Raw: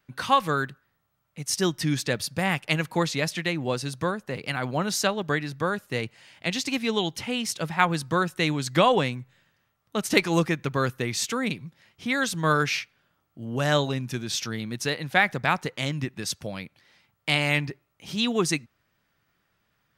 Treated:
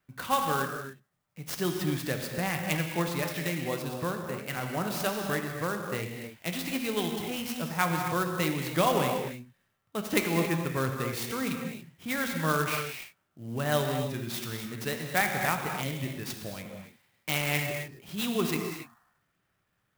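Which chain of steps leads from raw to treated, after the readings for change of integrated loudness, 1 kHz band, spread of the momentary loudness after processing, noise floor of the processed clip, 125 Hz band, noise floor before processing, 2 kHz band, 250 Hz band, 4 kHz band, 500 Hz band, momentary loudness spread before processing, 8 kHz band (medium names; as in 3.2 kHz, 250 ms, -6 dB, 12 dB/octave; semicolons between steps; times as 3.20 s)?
-4.5 dB, -4.5 dB, 12 LU, -77 dBFS, -3.5 dB, -73 dBFS, -5.5 dB, -3.5 dB, -7.0 dB, -4.0 dB, 11 LU, -5.0 dB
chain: peaking EQ 12 kHz -5.5 dB 1.4 oct; gated-style reverb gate 310 ms flat, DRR 2.5 dB; spectral replace 18.73–19.24 s, 680–1900 Hz both; sampling jitter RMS 0.037 ms; trim -6 dB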